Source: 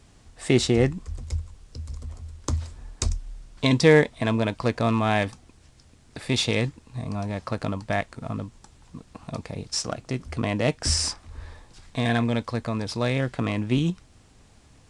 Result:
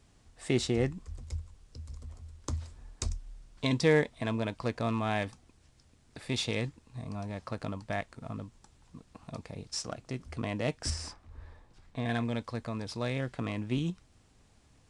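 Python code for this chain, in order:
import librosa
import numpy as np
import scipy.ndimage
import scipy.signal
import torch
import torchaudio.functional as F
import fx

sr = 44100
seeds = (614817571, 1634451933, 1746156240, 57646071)

y = fx.high_shelf(x, sr, hz=3000.0, db=-10.5, at=(10.9, 12.09))
y = F.gain(torch.from_numpy(y), -8.5).numpy()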